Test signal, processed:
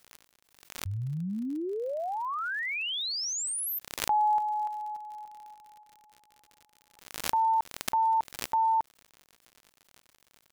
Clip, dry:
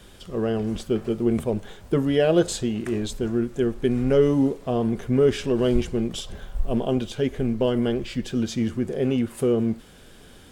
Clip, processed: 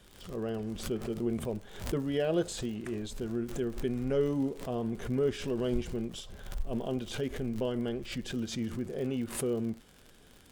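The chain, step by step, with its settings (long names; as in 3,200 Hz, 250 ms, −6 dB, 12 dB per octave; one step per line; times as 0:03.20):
surface crackle 65 per second −30 dBFS
background raised ahead of every attack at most 92 dB per second
level −10.5 dB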